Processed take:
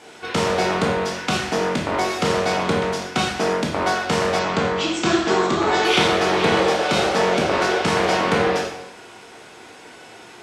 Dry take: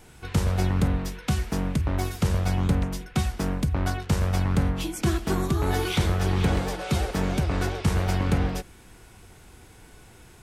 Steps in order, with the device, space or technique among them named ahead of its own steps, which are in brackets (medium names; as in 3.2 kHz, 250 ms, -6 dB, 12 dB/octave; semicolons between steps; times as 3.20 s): supermarket ceiling speaker (band-pass 330–6000 Hz; reverberation RT60 0.90 s, pre-delay 14 ms, DRR -2 dB); 4.39–5.85 s: elliptic low-pass 7.9 kHz, stop band 40 dB; trim +9 dB